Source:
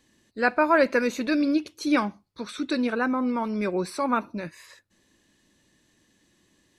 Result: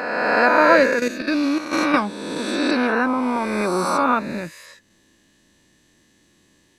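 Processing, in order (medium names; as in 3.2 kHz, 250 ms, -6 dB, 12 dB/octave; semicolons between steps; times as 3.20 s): reverse spectral sustain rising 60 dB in 1.88 s; 0.86–1.94 s: level held to a coarse grid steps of 11 dB; trim +2.5 dB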